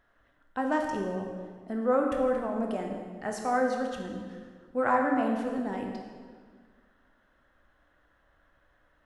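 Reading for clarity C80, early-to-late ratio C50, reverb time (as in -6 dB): 5.0 dB, 3.5 dB, 1.7 s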